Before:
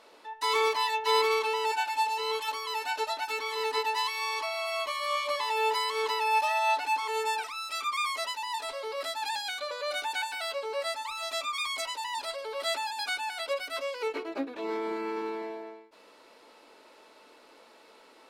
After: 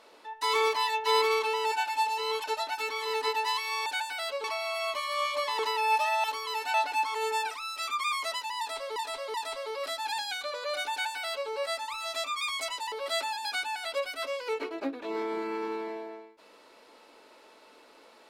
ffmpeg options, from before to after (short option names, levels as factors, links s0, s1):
-filter_complex "[0:a]asplit=10[s0][s1][s2][s3][s4][s5][s6][s7][s8][s9];[s0]atrim=end=2.442[s10];[s1]atrim=start=2.938:end=4.362[s11];[s2]atrim=start=10.078:end=10.662[s12];[s3]atrim=start=4.358:end=5.512[s13];[s4]atrim=start=6.018:end=6.672[s14];[s5]atrim=start=2.438:end=2.942[s15];[s6]atrim=start=6.668:end=8.892[s16];[s7]atrim=start=8.508:end=8.892[s17];[s8]atrim=start=8.508:end=12.092[s18];[s9]atrim=start=12.458[s19];[s10][s11]acrossfade=d=0.004:c1=hsin:c2=hsin[s20];[s20][s12]acrossfade=d=0.004:c1=hsin:c2=hsin[s21];[s21][s13]acrossfade=d=0.004:c1=hsin:c2=hsin[s22];[s22][s14]acrossfade=d=0.004:c1=hsin:c2=hsin[s23];[s23][s15]acrossfade=d=0.004:c1=hsin:c2=hsin[s24];[s24][s16]acrossfade=d=0.004:c1=hsin:c2=hsin[s25];[s25][s17]acrossfade=d=0.004:c1=hsin:c2=hsin[s26];[s26][s18]acrossfade=d=0.004:c1=hsin:c2=hsin[s27];[s27][s19]acrossfade=d=0.004:c1=hsin:c2=hsin"